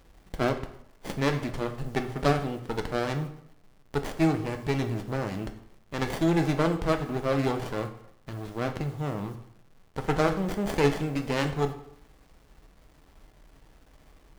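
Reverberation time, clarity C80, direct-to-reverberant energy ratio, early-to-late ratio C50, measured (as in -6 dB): 0.70 s, 13.5 dB, 5.5 dB, 10.5 dB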